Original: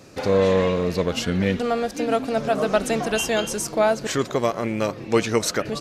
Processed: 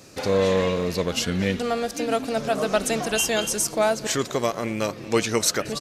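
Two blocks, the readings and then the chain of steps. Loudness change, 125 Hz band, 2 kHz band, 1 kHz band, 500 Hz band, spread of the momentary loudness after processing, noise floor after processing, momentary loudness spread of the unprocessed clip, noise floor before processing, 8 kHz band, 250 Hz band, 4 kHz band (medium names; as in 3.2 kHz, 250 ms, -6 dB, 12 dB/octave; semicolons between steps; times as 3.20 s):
-1.0 dB, -2.5 dB, -0.5 dB, -2.0 dB, -2.5 dB, 5 LU, -39 dBFS, 5 LU, -37 dBFS, +4.5 dB, -2.5 dB, +2.0 dB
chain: treble shelf 3.5 kHz +8.5 dB; delay 225 ms -21.5 dB; trim -2.5 dB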